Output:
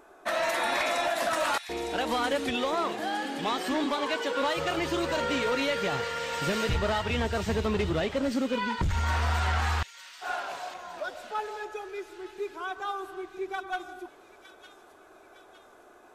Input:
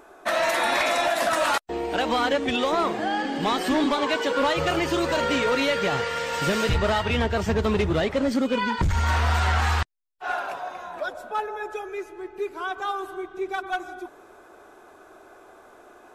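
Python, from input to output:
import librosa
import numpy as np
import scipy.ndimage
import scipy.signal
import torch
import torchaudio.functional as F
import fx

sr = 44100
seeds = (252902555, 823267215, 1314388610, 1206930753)

y = fx.low_shelf(x, sr, hz=150.0, db=-8.5, at=(2.71, 4.78))
y = fx.echo_wet_highpass(y, sr, ms=909, feedback_pct=50, hz=2900.0, wet_db=-7)
y = F.gain(torch.from_numpy(y), -5.0).numpy()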